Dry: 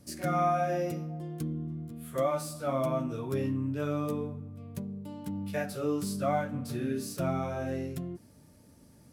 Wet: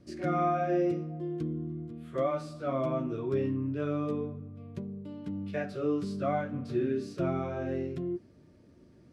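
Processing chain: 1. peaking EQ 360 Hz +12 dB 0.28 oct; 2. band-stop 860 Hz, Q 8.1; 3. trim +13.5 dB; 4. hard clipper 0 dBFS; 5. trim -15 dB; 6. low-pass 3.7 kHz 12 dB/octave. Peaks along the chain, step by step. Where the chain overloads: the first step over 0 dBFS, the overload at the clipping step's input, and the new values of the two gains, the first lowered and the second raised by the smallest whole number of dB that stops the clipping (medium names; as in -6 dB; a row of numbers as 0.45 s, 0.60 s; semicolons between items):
-16.0 dBFS, -16.5 dBFS, -3.0 dBFS, -3.0 dBFS, -18.0 dBFS, -18.0 dBFS; nothing clips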